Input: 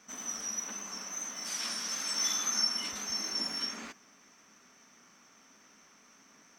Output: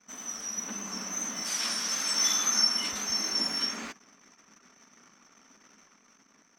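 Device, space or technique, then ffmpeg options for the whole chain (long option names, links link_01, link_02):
voice memo with heavy noise removal: -filter_complex "[0:a]asettb=1/sr,asplit=3[link_01][link_02][link_03];[link_01]atrim=end=0.574[link_04];[link_02]atrim=start=0.57:end=1.42,asetpts=PTS-STARTPTS,afade=type=in:duration=0.004:curve=qsin,afade=type=out:start_time=0.846:duration=0.004:curve=qsin,equalizer=frequency=190:width_type=o:width=1.8:gain=7.5[link_05];[link_03]atrim=start=1.416[link_06];[link_04][link_05]acrossfade=duration=0.004:curve1=hsin:curve2=qsin[link_07];[link_07][link_06]acrossfade=duration=0.004:curve1=qsin:curve2=hsin,anlmdn=0.0000631,dynaudnorm=framelen=180:gausssize=9:maxgain=5dB"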